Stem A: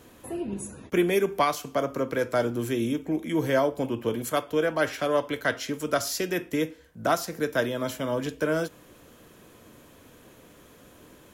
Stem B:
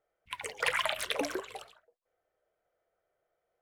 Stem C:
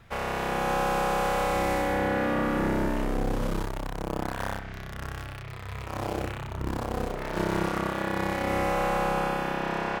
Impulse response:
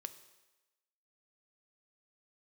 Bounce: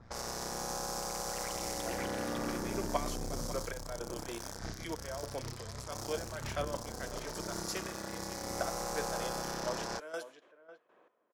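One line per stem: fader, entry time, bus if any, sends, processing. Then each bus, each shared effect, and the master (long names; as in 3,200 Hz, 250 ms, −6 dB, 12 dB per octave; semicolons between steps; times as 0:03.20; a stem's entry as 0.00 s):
−9.0 dB, 1.55 s, no bus, send −5.5 dB, echo send −11.5 dB, Chebyshev band-pass filter 600–9,900 Hz, order 2; gate pattern "xx.x....xx..." 159 BPM −12 dB
−4.0 dB, 0.70 s, bus A, no send, echo send −8.5 dB, brickwall limiter −21.5 dBFS, peak gain reduction 8.5 dB
+1.5 dB, 0.00 s, bus A, no send, no echo send, high shelf with overshoot 3,900 Hz +12.5 dB, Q 3; brickwall limiter −21 dBFS, peak gain reduction 10 dB
bus A: 0.0 dB, amplitude modulation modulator 120 Hz, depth 50%; brickwall limiter −28 dBFS, peak gain reduction 10 dB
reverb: on, RT60 1.1 s, pre-delay 3 ms
echo: single-tap delay 549 ms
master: low-pass that shuts in the quiet parts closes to 1,200 Hz, open at −38 dBFS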